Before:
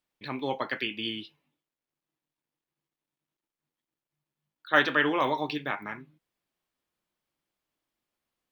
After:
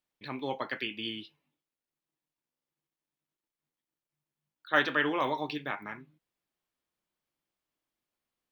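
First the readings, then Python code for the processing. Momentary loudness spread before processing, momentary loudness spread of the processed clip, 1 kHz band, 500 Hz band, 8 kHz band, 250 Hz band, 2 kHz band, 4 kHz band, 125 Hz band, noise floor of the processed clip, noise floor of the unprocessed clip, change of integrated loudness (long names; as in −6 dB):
15 LU, 15 LU, −3.5 dB, −3.5 dB, can't be measured, −3.5 dB, −3.5 dB, −3.5 dB, −3.5 dB, below −85 dBFS, below −85 dBFS, −3.5 dB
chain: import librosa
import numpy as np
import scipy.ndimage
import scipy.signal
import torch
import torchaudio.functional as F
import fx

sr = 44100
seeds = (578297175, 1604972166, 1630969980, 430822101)

y = fx.buffer_glitch(x, sr, at_s=(2.5,), block=2048, repeats=3)
y = F.gain(torch.from_numpy(y), -3.5).numpy()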